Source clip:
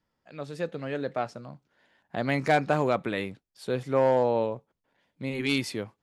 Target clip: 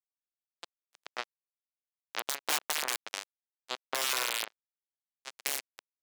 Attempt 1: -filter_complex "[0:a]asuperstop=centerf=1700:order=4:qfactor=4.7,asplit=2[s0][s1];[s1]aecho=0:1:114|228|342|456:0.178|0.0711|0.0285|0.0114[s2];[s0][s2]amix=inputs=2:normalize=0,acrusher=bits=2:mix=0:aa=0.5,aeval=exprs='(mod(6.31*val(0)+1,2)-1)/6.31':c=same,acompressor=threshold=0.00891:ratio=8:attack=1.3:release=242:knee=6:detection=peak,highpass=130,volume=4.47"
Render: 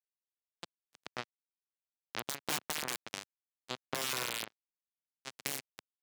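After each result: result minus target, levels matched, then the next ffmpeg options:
125 Hz band +19.5 dB; compression: peak gain reduction +5.5 dB
-filter_complex "[0:a]asuperstop=centerf=1700:order=4:qfactor=4.7,asplit=2[s0][s1];[s1]aecho=0:1:114|228|342|456:0.178|0.0711|0.0285|0.0114[s2];[s0][s2]amix=inputs=2:normalize=0,acrusher=bits=2:mix=0:aa=0.5,aeval=exprs='(mod(6.31*val(0)+1,2)-1)/6.31':c=same,acompressor=threshold=0.00891:ratio=8:attack=1.3:release=242:knee=6:detection=peak,highpass=500,volume=4.47"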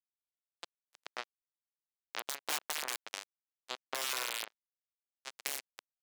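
compression: peak gain reduction +5.5 dB
-filter_complex "[0:a]asuperstop=centerf=1700:order=4:qfactor=4.7,asplit=2[s0][s1];[s1]aecho=0:1:114|228|342|456:0.178|0.0711|0.0285|0.0114[s2];[s0][s2]amix=inputs=2:normalize=0,acrusher=bits=2:mix=0:aa=0.5,aeval=exprs='(mod(6.31*val(0)+1,2)-1)/6.31':c=same,acompressor=threshold=0.0178:ratio=8:attack=1.3:release=242:knee=6:detection=peak,highpass=500,volume=4.47"

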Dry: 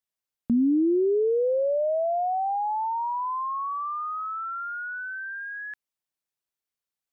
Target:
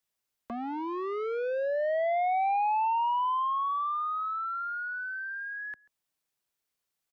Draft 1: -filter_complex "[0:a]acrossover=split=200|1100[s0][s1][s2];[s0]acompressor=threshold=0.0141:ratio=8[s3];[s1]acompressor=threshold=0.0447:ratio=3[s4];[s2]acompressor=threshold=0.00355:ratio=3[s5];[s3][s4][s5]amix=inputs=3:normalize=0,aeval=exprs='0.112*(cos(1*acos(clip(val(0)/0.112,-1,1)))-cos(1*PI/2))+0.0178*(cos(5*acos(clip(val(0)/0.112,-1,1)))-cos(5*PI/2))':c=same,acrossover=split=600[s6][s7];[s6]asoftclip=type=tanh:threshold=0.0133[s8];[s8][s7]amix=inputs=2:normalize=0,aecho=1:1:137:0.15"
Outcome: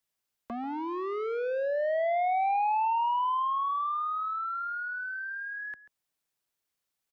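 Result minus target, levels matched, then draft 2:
echo-to-direct +8 dB
-filter_complex "[0:a]acrossover=split=200|1100[s0][s1][s2];[s0]acompressor=threshold=0.0141:ratio=8[s3];[s1]acompressor=threshold=0.0447:ratio=3[s4];[s2]acompressor=threshold=0.00355:ratio=3[s5];[s3][s4][s5]amix=inputs=3:normalize=0,aeval=exprs='0.112*(cos(1*acos(clip(val(0)/0.112,-1,1)))-cos(1*PI/2))+0.0178*(cos(5*acos(clip(val(0)/0.112,-1,1)))-cos(5*PI/2))':c=same,acrossover=split=600[s6][s7];[s6]asoftclip=type=tanh:threshold=0.0133[s8];[s8][s7]amix=inputs=2:normalize=0,aecho=1:1:137:0.0596"

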